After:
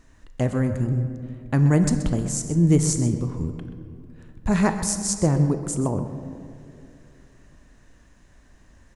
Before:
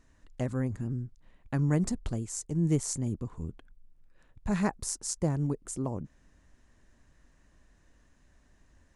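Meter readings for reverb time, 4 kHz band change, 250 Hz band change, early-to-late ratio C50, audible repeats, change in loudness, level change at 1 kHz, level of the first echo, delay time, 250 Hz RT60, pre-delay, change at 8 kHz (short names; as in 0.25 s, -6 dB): 2.7 s, +9.0 dB, +9.5 dB, 8.0 dB, 1, +9.5 dB, +9.0 dB, -13.5 dB, 0.129 s, 3.1 s, 22 ms, +9.0 dB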